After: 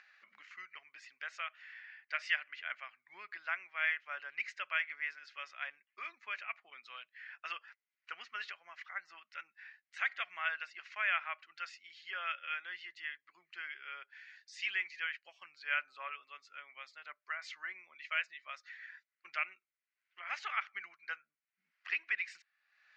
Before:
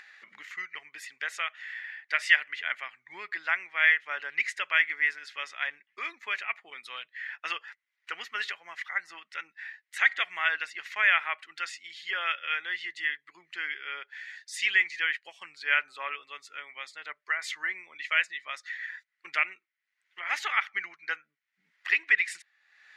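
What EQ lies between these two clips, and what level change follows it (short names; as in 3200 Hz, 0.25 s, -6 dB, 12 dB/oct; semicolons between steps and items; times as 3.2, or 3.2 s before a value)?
air absorption 90 m; speaker cabinet 270–6600 Hz, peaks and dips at 310 Hz -10 dB, 450 Hz -10 dB, 870 Hz -6 dB, 1900 Hz -8 dB, 3500 Hz -7 dB; -5.0 dB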